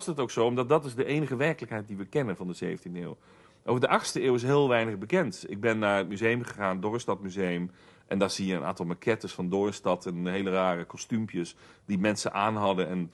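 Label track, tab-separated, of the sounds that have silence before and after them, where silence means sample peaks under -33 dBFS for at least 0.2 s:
3.680000	7.660000	sound
8.110000	11.490000	sound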